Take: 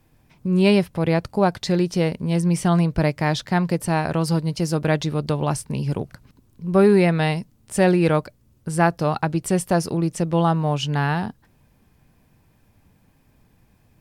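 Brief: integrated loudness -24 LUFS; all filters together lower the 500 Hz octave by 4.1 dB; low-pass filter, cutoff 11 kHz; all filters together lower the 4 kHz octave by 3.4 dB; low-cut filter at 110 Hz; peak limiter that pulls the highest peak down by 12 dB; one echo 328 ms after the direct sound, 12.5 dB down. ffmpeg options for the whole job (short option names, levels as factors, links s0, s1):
-af "highpass=110,lowpass=11000,equalizer=f=500:t=o:g=-5.5,equalizer=f=4000:t=o:g=-4.5,alimiter=limit=0.119:level=0:latency=1,aecho=1:1:328:0.237,volume=1.58"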